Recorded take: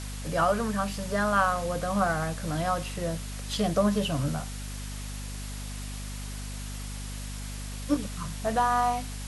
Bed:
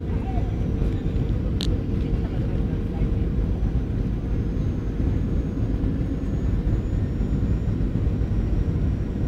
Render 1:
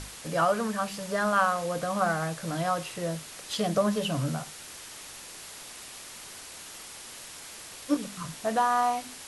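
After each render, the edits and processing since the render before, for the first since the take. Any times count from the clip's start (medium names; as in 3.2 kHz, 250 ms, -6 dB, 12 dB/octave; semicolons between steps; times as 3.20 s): hum notches 50/100/150/200/250 Hz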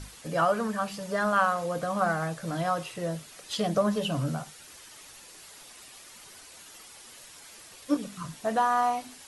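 noise reduction 8 dB, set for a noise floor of -45 dBFS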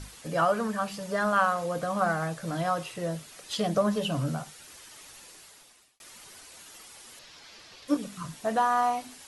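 5.26–6.00 s: fade out; 7.19–7.88 s: resonant high shelf 6.7 kHz -11.5 dB, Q 1.5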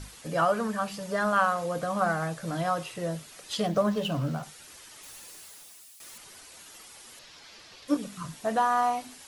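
3.66–4.43 s: median filter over 5 samples; 5.03–6.18 s: zero-crossing glitches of -47 dBFS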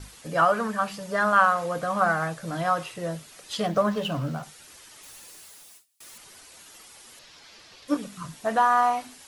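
gate with hold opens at -42 dBFS; dynamic bell 1.4 kHz, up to +6 dB, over -38 dBFS, Q 0.71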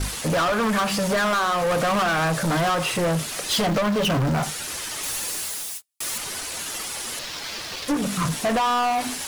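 compression 10:1, threshold -27 dBFS, peak gain reduction 14 dB; waveshaping leveller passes 5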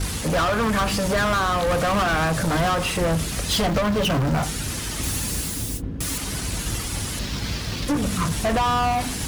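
add bed -6.5 dB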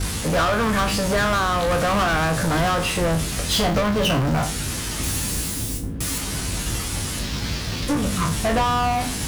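spectral sustain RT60 0.33 s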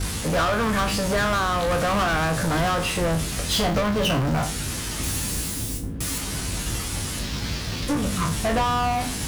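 trim -2 dB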